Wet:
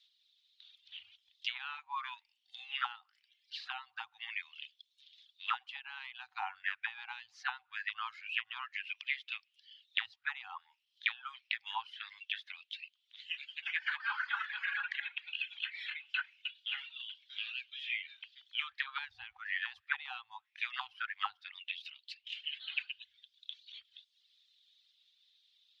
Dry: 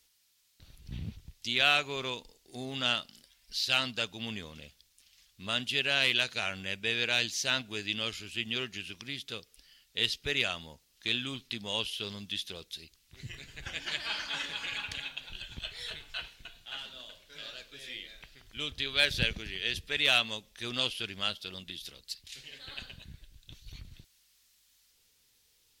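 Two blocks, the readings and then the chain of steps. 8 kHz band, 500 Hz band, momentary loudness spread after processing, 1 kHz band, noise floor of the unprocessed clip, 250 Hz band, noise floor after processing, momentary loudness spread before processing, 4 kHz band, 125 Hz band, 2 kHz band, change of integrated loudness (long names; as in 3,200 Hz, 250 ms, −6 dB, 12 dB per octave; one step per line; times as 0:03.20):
below −25 dB, below −35 dB, 15 LU, −1.0 dB, −69 dBFS, below −40 dB, −79 dBFS, 19 LU, −10.5 dB, below −40 dB, −4.0 dB, −7.5 dB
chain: reverb reduction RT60 0.73 s
three-way crossover with the lows and the highs turned down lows −14 dB, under 580 Hz, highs −15 dB, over 4,300 Hz
envelope filter 470–3,700 Hz, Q 7.1, down, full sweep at −28 dBFS
brick-wall band-stop 110–750 Hz
level +13.5 dB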